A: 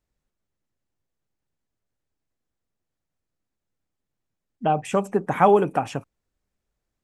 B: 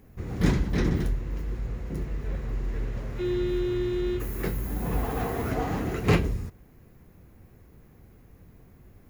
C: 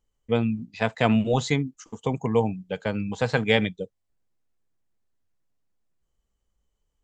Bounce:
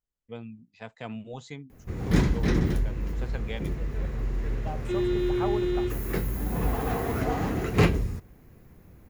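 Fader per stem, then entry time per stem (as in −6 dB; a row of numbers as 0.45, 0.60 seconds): −16.5, +1.0, −17.0 decibels; 0.00, 1.70, 0.00 seconds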